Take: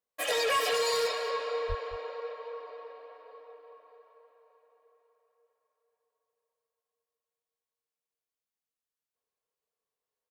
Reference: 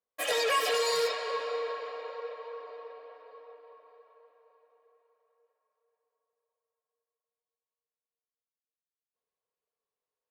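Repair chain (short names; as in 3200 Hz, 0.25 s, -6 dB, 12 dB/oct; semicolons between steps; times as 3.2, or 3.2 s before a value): clip repair -21.5 dBFS; 1.68–1.8 HPF 140 Hz 24 dB/oct; inverse comb 0.216 s -14 dB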